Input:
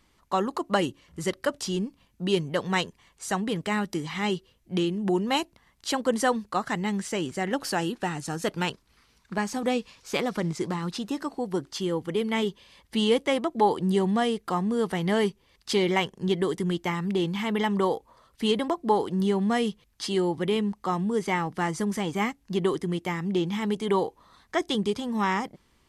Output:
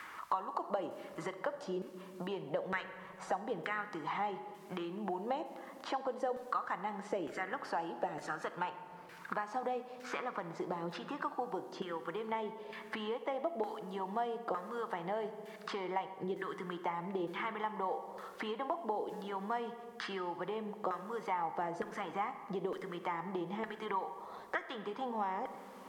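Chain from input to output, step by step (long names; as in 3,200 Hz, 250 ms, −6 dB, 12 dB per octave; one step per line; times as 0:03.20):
downward compressor 6 to 1, threshold −35 dBFS, peak gain reduction 17.5 dB
background noise violet −56 dBFS
auto-filter band-pass saw down 1.1 Hz 540–1,600 Hz
rectangular room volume 1,100 cubic metres, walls mixed, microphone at 0.57 metres
multiband upward and downward compressor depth 70%
level +8.5 dB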